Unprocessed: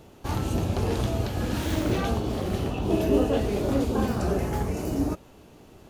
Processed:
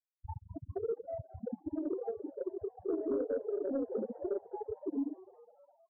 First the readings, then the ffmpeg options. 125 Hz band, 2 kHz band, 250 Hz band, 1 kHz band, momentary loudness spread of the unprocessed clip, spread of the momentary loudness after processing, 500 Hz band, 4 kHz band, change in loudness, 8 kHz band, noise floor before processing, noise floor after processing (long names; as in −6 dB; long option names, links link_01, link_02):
−23.5 dB, below −25 dB, −12.0 dB, −16.5 dB, 6 LU, 11 LU, −7.5 dB, below −40 dB, −11.5 dB, below −40 dB, −51 dBFS, −75 dBFS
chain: -filter_complex "[0:a]acrossover=split=420[link_01][link_02];[link_01]acompressor=threshold=-40dB:ratio=4[link_03];[link_03][link_02]amix=inputs=2:normalize=0,afftfilt=real='re*gte(hypot(re,im),0.141)':imag='im*gte(hypot(re,im),0.141)':win_size=1024:overlap=0.75,equalizer=frequency=250:width_type=o:width=1:gain=12,equalizer=frequency=500:width_type=o:width=1:gain=10,equalizer=frequency=1000:width_type=o:width=1:gain=-10,equalizer=frequency=2000:width_type=o:width=1:gain=-11,equalizer=frequency=4000:width_type=o:width=1:gain=4,acompressor=threshold=-41dB:ratio=3,afftdn=noise_reduction=26:noise_floor=-35,aresample=16000,aresample=44100,aeval=exprs='0.251*(cos(1*acos(clip(val(0)/0.251,-1,1)))-cos(1*PI/2))+0.1*(cos(7*acos(clip(val(0)/0.251,-1,1)))-cos(7*PI/2))+0.00251*(cos(8*acos(clip(val(0)/0.251,-1,1)))-cos(8*PI/2))':channel_layout=same,bandreject=frequency=620:width=12,afftfilt=real='re*lt(hypot(re,im),0.398)':imag='im*lt(hypot(re,im),0.398)':win_size=1024:overlap=0.75,asplit=6[link_04][link_05][link_06][link_07][link_08][link_09];[link_05]adelay=205,afreqshift=97,volume=-21dB[link_10];[link_06]adelay=410,afreqshift=194,volume=-25.2dB[link_11];[link_07]adelay=615,afreqshift=291,volume=-29.3dB[link_12];[link_08]adelay=820,afreqshift=388,volume=-33.5dB[link_13];[link_09]adelay=1025,afreqshift=485,volume=-37.6dB[link_14];[link_04][link_10][link_11][link_12][link_13][link_14]amix=inputs=6:normalize=0"